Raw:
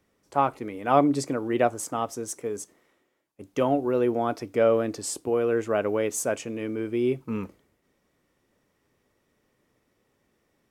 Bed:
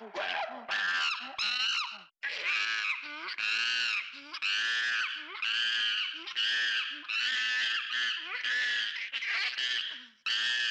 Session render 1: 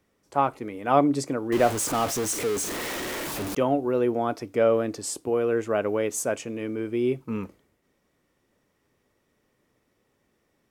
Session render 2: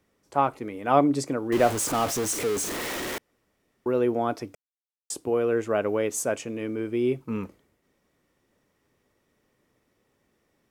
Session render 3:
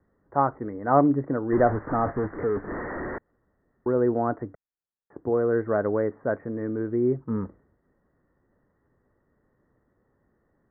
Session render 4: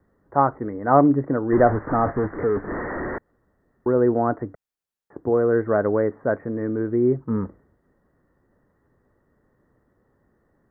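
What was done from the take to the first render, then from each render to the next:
0:01.52–0:03.55: converter with a step at zero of −25.5 dBFS
0:03.18–0:03.86: fill with room tone; 0:04.55–0:05.10: silence
Butterworth low-pass 1,900 Hz 96 dB per octave; low-shelf EQ 140 Hz +8 dB
level +4 dB; brickwall limiter −2 dBFS, peak gain reduction 1 dB

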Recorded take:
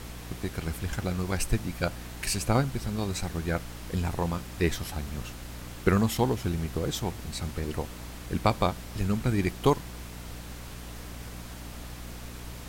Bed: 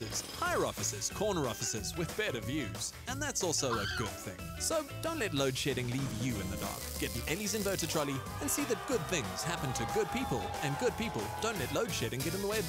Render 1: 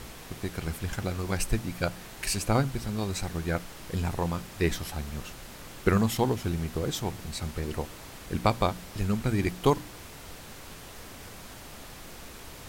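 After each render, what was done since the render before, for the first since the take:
hum removal 60 Hz, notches 5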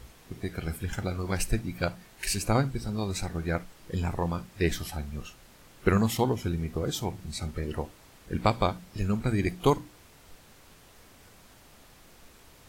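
noise reduction from a noise print 10 dB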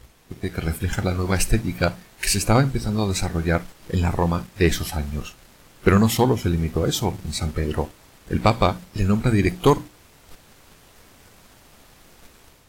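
automatic gain control gain up to 5 dB
leveller curve on the samples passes 1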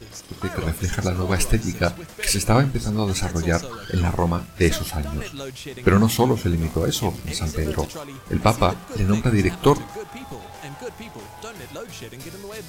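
mix in bed −2 dB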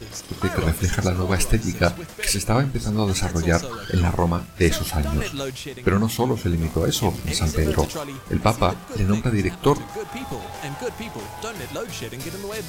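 speech leveller within 5 dB 0.5 s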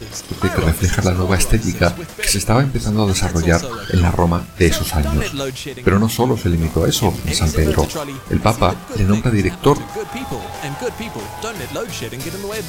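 level +5.5 dB
brickwall limiter −2 dBFS, peak gain reduction 2.5 dB

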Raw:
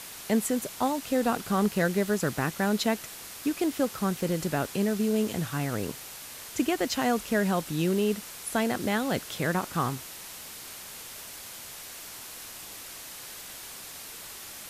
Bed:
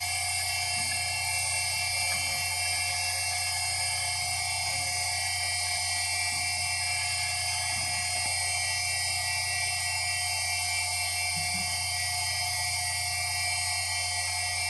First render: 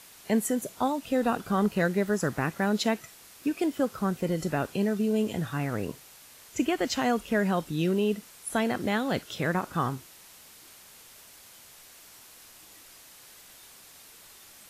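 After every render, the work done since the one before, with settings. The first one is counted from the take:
noise reduction from a noise print 9 dB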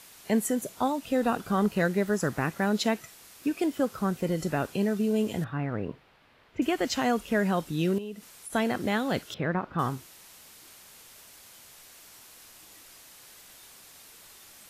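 0:05.44–0:06.62: high-frequency loss of the air 400 metres
0:07.98–0:08.53: downward compressor 2.5 to 1, threshold −40 dBFS
0:09.34–0:09.79: high-frequency loss of the air 350 metres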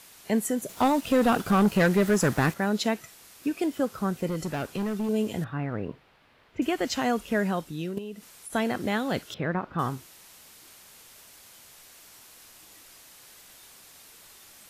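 0:00.69–0:02.54: leveller curve on the samples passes 2
0:04.28–0:05.09: hard clipping −25.5 dBFS
0:07.40–0:07.97: fade out, to −9.5 dB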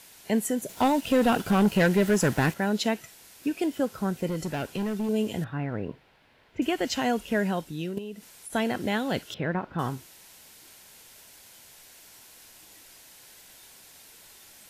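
notch filter 1,200 Hz, Q 7.1
dynamic equaliser 2,900 Hz, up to +4 dB, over −53 dBFS, Q 6.1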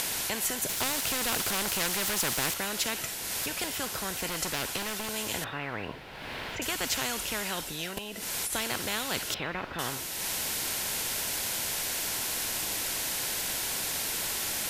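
upward compression, threshold −39 dBFS
every bin compressed towards the loudest bin 4 to 1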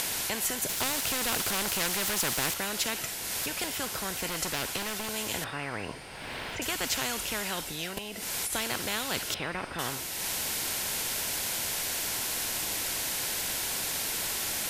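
mix in bed −22 dB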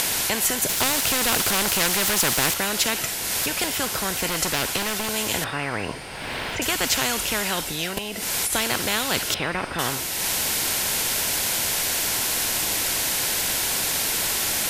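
level +8 dB

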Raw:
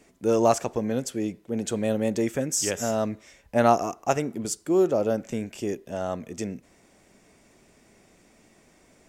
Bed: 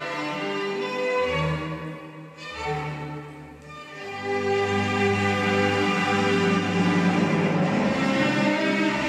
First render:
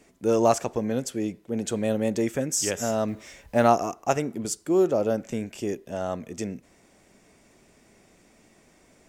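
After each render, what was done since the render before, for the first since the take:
0:03.08–0:03.67: mu-law and A-law mismatch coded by mu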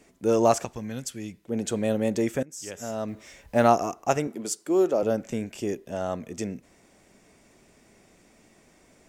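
0:00.65–0:01.45: parametric band 470 Hz −12.5 dB 2.2 octaves
0:02.43–0:03.60: fade in, from −21 dB
0:04.27–0:05.03: high-pass filter 250 Hz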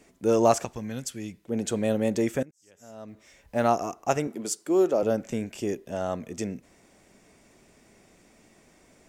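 0:02.51–0:04.34: fade in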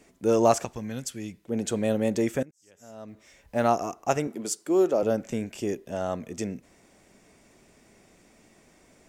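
no processing that can be heard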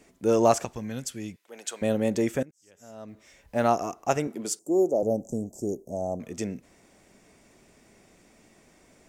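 0:01.36–0:01.82: high-pass filter 970 Hz
0:04.59–0:06.20: elliptic band-stop filter 760–6,400 Hz, stop band 60 dB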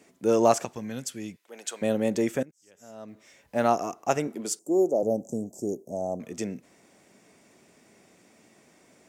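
high-pass filter 130 Hz 12 dB per octave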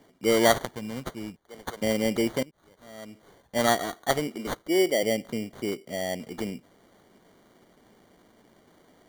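decimation without filtering 17×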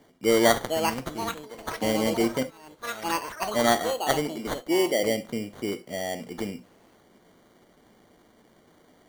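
reverb whose tail is shaped and stops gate 90 ms flat, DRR 11 dB
delay with pitch and tempo change per echo 526 ms, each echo +6 semitones, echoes 3, each echo −6 dB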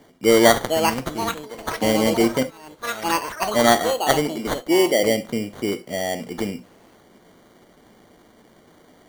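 level +6 dB
brickwall limiter −2 dBFS, peak gain reduction 1.5 dB

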